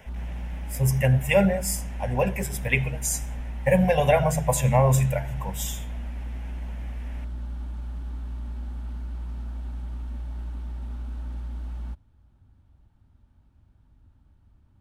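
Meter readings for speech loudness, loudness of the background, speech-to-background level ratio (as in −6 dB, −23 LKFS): −24.0 LKFS, −36.0 LKFS, 12.0 dB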